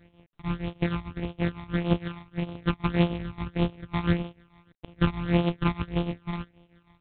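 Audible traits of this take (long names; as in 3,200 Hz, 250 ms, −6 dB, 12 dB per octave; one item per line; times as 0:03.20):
a buzz of ramps at a fixed pitch in blocks of 256 samples
phaser sweep stages 12, 1.7 Hz, lowest notch 480–1,600 Hz
tremolo triangle 6.4 Hz, depth 80%
G.726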